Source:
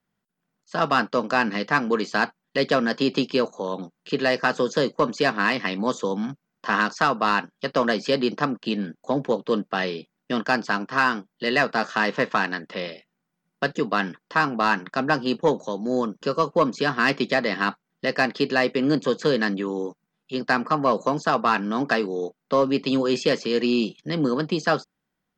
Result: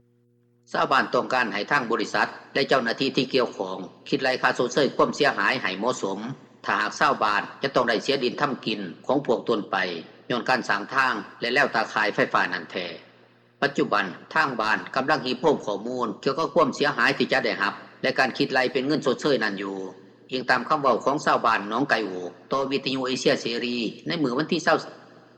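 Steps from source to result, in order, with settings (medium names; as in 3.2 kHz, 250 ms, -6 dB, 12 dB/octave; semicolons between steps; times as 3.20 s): two-slope reverb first 0.58 s, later 2.8 s, from -18 dB, DRR 9.5 dB; in parallel at -3 dB: peak limiter -17.5 dBFS, peak gain reduction 10.5 dB; on the sum: mains buzz 120 Hz, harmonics 4, -52 dBFS; harmonic-percussive split harmonic -12 dB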